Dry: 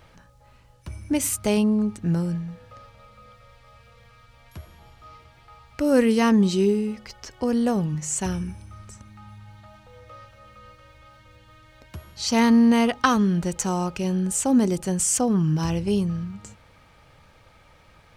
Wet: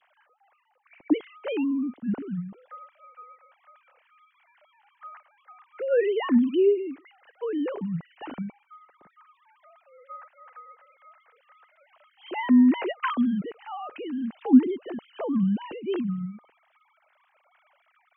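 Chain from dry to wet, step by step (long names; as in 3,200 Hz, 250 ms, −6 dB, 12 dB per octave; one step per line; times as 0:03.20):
three sine waves on the formant tracks
level −3.5 dB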